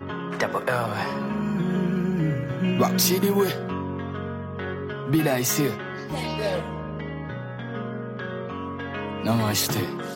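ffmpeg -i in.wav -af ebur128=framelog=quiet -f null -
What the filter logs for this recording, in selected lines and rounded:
Integrated loudness:
  I:         -26.0 LUFS
  Threshold: -36.0 LUFS
Loudness range:
  LRA:         7.0 LU
  Threshold: -45.9 LUFS
  LRA low:   -31.0 LUFS
  LRA high:  -23.9 LUFS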